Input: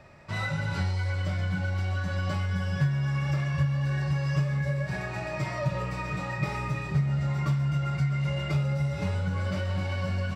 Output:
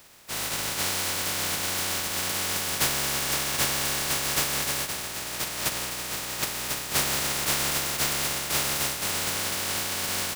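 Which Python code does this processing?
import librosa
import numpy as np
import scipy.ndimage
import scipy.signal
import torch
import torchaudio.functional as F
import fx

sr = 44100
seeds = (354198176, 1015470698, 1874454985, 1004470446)

y = fx.spec_flatten(x, sr, power=0.14)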